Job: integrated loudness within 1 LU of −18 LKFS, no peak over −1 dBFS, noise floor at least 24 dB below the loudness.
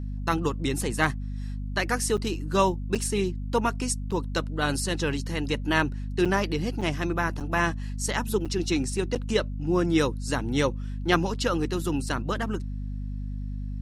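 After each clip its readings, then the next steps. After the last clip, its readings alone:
number of dropouts 8; longest dropout 6.5 ms; mains hum 50 Hz; hum harmonics up to 250 Hz; level of the hum −30 dBFS; integrated loudness −27.5 LKFS; sample peak −8.5 dBFS; target loudness −18.0 LKFS
→ repair the gap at 0:02.17/0:02.95/0:04.11/0:06.25/0:06.81/0:07.40/0:08.45/0:09.15, 6.5 ms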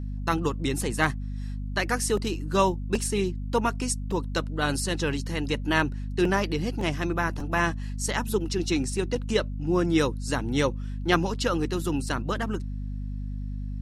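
number of dropouts 0; mains hum 50 Hz; hum harmonics up to 250 Hz; level of the hum −30 dBFS
→ mains-hum notches 50/100/150/200/250 Hz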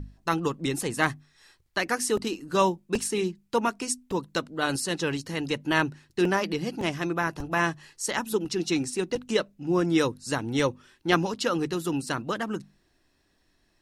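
mains hum none found; integrated loudness −28.0 LKFS; sample peak −7.5 dBFS; target loudness −18.0 LKFS
→ level +10 dB
brickwall limiter −1 dBFS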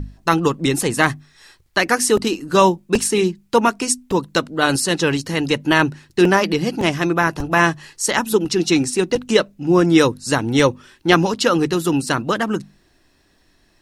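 integrated loudness −18.0 LKFS; sample peak −1.0 dBFS; background noise floor −59 dBFS

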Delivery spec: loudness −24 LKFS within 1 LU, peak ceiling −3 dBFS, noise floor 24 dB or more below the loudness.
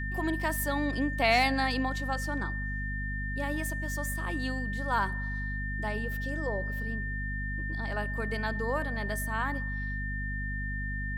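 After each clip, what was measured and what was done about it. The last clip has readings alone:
mains hum 50 Hz; hum harmonics up to 250 Hz; level of the hum −32 dBFS; interfering tone 1,800 Hz; level of the tone −36 dBFS; integrated loudness −31.5 LKFS; sample peak −14.0 dBFS; target loudness −24.0 LKFS
→ hum removal 50 Hz, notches 5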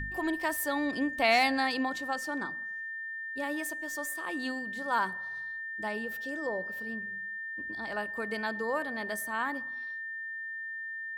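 mains hum none found; interfering tone 1,800 Hz; level of the tone −36 dBFS
→ notch filter 1,800 Hz, Q 30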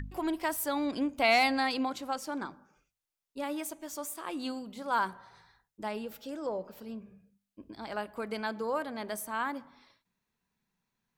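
interfering tone none found; integrated loudness −33.0 LKFS; sample peak −15.5 dBFS; target loudness −24.0 LKFS
→ level +9 dB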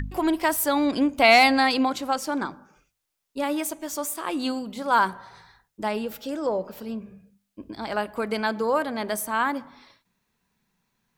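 integrated loudness −24.0 LKFS; sample peak −6.5 dBFS; background noise floor −79 dBFS

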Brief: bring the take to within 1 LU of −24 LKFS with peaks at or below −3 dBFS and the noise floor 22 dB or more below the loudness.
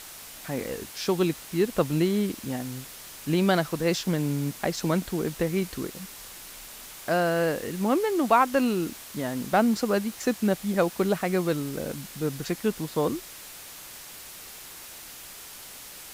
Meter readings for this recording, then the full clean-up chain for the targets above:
background noise floor −44 dBFS; target noise floor −49 dBFS; integrated loudness −27.0 LKFS; sample peak −8.5 dBFS; target loudness −24.0 LKFS
→ noise reduction from a noise print 6 dB
level +3 dB

